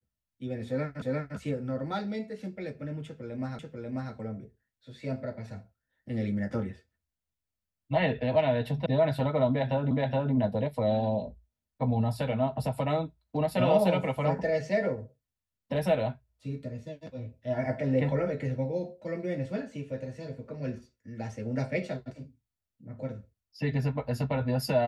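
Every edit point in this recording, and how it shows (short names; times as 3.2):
1.02 repeat of the last 0.35 s
3.59 repeat of the last 0.54 s
8.86 sound cut off
9.91 repeat of the last 0.42 s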